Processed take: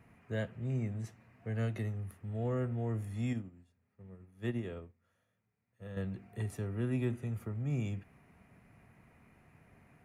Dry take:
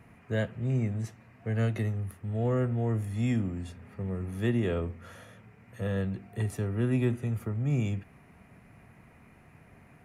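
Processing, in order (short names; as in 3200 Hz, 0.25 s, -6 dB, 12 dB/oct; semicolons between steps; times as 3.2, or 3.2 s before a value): 3.33–5.97 upward expander 2.5:1, over -39 dBFS; gain -6.5 dB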